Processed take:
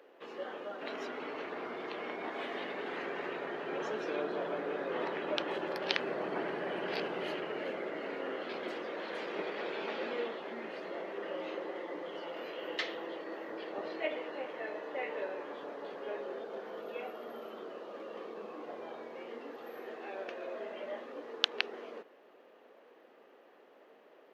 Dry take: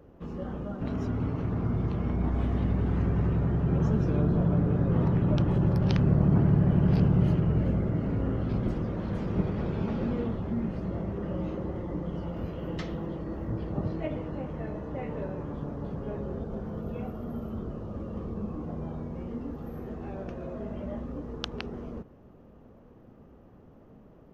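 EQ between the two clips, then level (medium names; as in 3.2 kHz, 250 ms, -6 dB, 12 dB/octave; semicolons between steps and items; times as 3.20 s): high-pass 400 Hz 24 dB/octave; high-order bell 2.7 kHz +8.5 dB; 0.0 dB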